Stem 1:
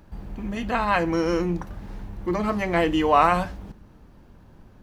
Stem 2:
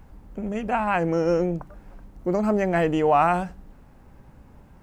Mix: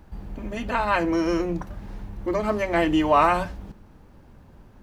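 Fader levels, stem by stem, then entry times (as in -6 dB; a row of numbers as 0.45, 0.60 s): -1.0, -5.0 dB; 0.00, 0.00 s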